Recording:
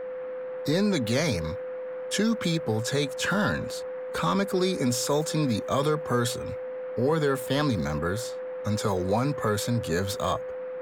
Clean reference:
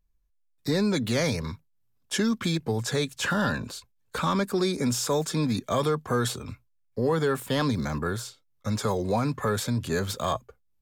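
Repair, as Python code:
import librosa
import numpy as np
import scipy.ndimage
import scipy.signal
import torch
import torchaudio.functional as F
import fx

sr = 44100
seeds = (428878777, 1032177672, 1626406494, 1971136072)

y = fx.notch(x, sr, hz=510.0, q=30.0)
y = fx.noise_reduce(y, sr, print_start_s=0.01, print_end_s=0.51, reduce_db=30.0)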